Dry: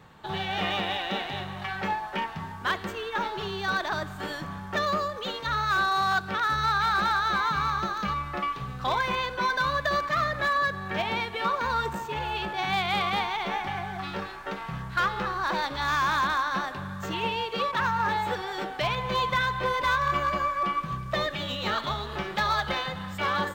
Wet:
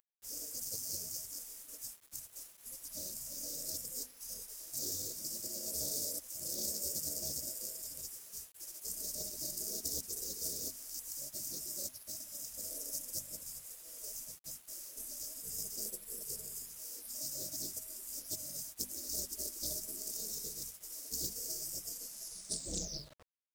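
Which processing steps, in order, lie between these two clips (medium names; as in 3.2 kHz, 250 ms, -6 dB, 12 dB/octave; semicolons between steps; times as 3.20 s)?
tape stop on the ending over 1.70 s; FFT band-reject 640–3600 Hz; RIAA curve recording; spectral gate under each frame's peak -25 dB weak; high-order bell 3 kHz -14 dB 1.2 oct; hum notches 50/100/150/200/250 Hz; in parallel at -2 dB: peak limiter -32.5 dBFS, peak gain reduction 9 dB; on the sum: bit crusher 10-bit; loudspeaker Doppler distortion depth 0.3 ms; trim +4.5 dB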